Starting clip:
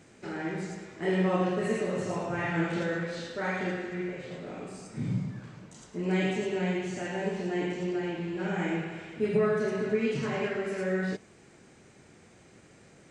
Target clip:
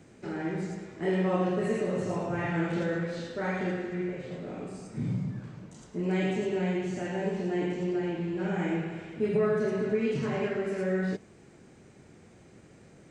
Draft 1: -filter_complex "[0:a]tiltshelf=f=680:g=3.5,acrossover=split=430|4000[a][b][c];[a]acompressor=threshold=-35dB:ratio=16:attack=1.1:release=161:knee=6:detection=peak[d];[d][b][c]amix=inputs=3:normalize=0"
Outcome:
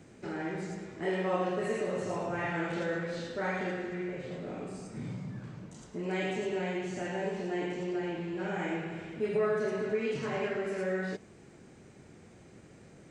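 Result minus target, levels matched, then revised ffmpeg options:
compressor: peak gain reduction +10.5 dB
-filter_complex "[0:a]tiltshelf=f=680:g=3.5,acrossover=split=430|4000[a][b][c];[a]acompressor=threshold=-24dB:ratio=16:attack=1.1:release=161:knee=6:detection=peak[d];[d][b][c]amix=inputs=3:normalize=0"

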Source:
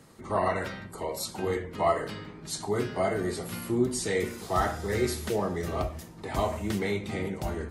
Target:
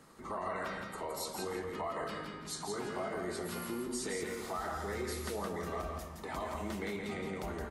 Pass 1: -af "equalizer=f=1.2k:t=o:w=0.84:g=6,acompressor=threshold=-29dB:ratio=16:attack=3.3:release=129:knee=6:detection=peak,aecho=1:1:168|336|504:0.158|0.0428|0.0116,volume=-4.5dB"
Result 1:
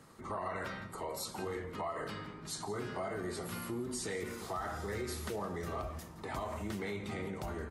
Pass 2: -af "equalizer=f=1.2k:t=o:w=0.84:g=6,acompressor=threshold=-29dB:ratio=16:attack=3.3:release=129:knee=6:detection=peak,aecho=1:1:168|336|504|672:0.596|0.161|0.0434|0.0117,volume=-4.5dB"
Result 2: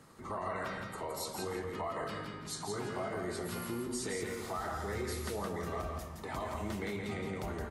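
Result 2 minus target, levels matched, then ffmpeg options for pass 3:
125 Hz band +3.5 dB
-af "equalizer=f=1.2k:t=o:w=0.84:g=6,acompressor=threshold=-29dB:ratio=16:attack=3.3:release=129:knee=6:detection=peak,equalizer=f=110:t=o:w=0.41:g=-13,aecho=1:1:168|336|504|672:0.596|0.161|0.0434|0.0117,volume=-4.5dB"

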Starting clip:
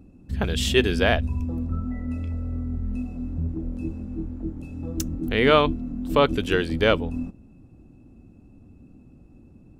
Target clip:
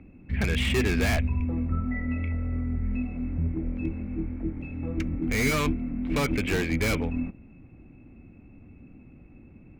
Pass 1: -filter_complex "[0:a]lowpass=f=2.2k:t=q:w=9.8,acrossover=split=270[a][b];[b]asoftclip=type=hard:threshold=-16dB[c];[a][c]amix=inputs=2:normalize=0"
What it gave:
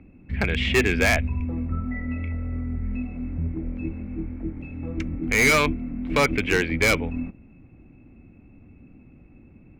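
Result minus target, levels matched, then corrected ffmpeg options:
hard clip: distortion -6 dB
-filter_complex "[0:a]lowpass=f=2.2k:t=q:w=9.8,acrossover=split=270[a][b];[b]asoftclip=type=hard:threshold=-27dB[c];[a][c]amix=inputs=2:normalize=0"

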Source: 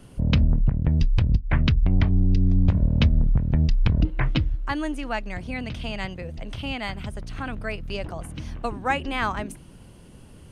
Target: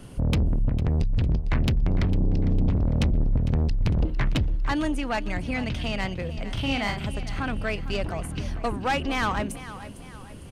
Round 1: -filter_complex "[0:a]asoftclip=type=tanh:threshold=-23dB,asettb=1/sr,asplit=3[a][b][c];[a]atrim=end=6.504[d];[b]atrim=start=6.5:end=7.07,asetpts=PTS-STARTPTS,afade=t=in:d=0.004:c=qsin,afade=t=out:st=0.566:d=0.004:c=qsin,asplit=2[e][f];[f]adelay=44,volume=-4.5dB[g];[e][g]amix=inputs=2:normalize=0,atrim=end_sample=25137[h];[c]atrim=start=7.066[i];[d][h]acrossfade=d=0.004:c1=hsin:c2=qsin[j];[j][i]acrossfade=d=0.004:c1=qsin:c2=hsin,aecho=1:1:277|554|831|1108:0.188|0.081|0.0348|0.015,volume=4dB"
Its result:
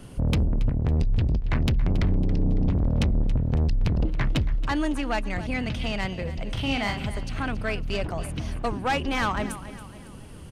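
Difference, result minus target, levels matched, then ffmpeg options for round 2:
echo 0.176 s early
-filter_complex "[0:a]asoftclip=type=tanh:threshold=-23dB,asettb=1/sr,asplit=3[a][b][c];[a]atrim=end=6.504[d];[b]atrim=start=6.5:end=7.07,asetpts=PTS-STARTPTS,afade=t=in:d=0.004:c=qsin,afade=t=out:st=0.566:d=0.004:c=qsin,asplit=2[e][f];[f]adelay=44,volume=-4.5dB[g];[e][g]amix=inputs=2:normalize=0,atrim=end_sample=25137[h];[c]atrim=start=7.066[i];[d][h]acrossfade=d=0.004:c1=hsin:c2=qsin[j];[j][i]acrossfade=d=0.004:c1=qsin:c2=hsin,aecho=1:1:453|906|1359|1812:0.188|0.081|0.0348|0.015,volume=4dB"

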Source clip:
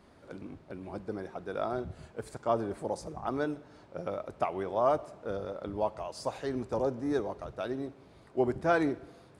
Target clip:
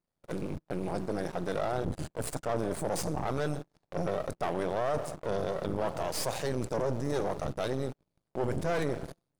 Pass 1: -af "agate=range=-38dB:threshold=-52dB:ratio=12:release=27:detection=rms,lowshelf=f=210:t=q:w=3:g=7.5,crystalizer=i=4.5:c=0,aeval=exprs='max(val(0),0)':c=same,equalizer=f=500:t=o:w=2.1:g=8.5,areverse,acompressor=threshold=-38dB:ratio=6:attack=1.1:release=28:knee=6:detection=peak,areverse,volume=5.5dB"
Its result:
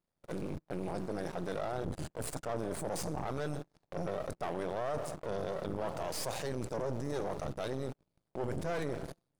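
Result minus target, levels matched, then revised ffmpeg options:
compressor: peak gain reduction +5.5 dB
-af "agate=range=-38dB:threshold=-52dB:ratio=12:release=27:detection=rms,lowshelf=f=210:t=q:w=3:g=7.5,crystalizer=i=4.5:c=0,aeval=exprs='max(val(0),0)':c=same,equalizer=f=500:t=o:w=2.1:g=8.5,areverse,acompressor=threshold=-31.5dB:ratio=6:attack=1.1:release=28:knee=6:detection=peak,areverse,volume=5.5dB"

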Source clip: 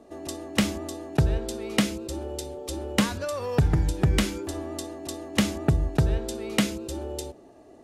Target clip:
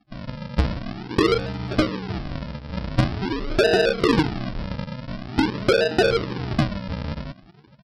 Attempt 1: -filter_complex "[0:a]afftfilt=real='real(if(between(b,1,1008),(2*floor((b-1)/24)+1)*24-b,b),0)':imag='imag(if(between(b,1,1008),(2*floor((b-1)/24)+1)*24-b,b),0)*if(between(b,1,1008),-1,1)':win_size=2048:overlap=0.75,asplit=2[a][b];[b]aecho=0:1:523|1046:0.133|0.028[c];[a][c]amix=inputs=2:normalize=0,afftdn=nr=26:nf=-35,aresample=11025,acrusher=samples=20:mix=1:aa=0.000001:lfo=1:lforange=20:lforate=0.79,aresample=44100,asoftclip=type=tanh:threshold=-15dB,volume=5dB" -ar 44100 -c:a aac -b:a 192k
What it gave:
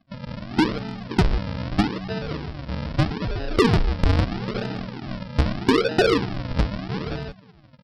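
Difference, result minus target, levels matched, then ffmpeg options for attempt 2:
decimation with a swept rate: distortion +11 dB
-filter_complex "[0:a]afftfilt=real='real(if(between(b,1,1008),(2*floor((b-1)/24)+1)*24-b,b),0)':imag='imag(if(between(b,1,1008),(2*floor((b-1)/24)+1)*24-b,b),0)*if(between(b,1,1008),-1,1)':win_size=2048:overlap=0.75,asplit=2[a][b];[b]aecho=0:1:523|1046:0.133|0.028[c];[a][c]amix=inputs=2:normalize=0,afftdn=nr=26:nf=-35,aresample=11025,acrusher=samples=20:mix=1:aa=0.000001:lfo=1:lforange=20:lforate=0.46,aresample=44100,asoftclip=type=tanh:threshold=-15dB,volume=5dB" -ar 44100 -c:a aac -b:a 192k

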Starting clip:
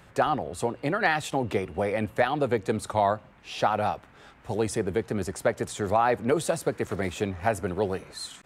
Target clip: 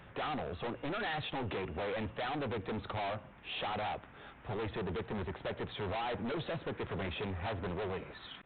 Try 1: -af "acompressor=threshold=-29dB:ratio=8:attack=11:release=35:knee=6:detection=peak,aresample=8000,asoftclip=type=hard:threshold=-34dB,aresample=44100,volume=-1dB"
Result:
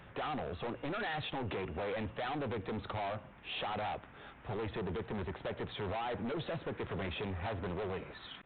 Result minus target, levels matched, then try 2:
compressor: peak gain reduction +10 dB
-af "aresample=8000,asoftclip=type=hard:threshold=-34dB,aresample=44100,volume=-1dB"

